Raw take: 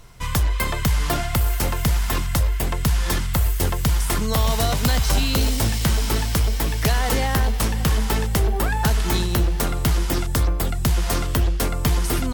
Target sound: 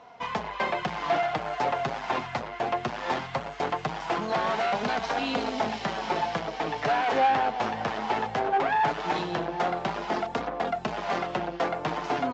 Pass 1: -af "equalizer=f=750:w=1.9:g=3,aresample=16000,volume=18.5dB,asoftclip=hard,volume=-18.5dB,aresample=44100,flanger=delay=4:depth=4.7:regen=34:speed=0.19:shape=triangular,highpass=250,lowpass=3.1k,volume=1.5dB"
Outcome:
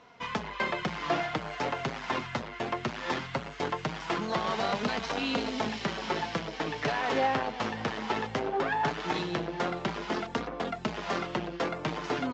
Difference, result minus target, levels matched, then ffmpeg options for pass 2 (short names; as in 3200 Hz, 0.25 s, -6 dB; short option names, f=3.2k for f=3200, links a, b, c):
1000 Hz band -2.5 dB
-af "equalizer=f=750:w=1.9:g=14.5,aresample=16000,volume=18.5dB,asoftclip=hard,volume=-18.5dB,aresample=44100,flanger=delay=4:depth=4.7:regen=34:speed=0.19:shape=triangular,highpass=250,lowpass=3.1k,volume=1.5dB"